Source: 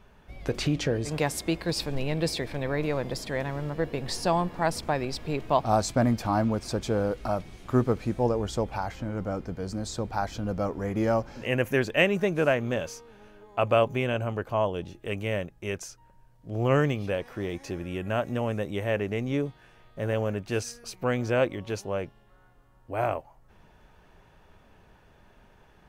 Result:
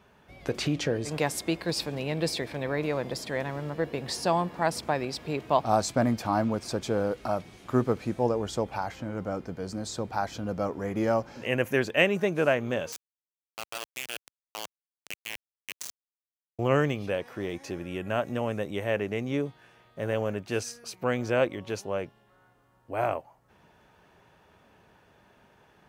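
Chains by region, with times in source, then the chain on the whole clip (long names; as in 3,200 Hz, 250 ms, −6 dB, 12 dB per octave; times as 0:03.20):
0:12.92–0:16.59: resonant band-pass 6,900 Hz, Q 0.83 + output level in coarse steps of 9 dB + log-companded quantiser 2 bits
whole clip: high-pass filter 75 Hz; low-shelf EQ 140 Hz −5.5 dB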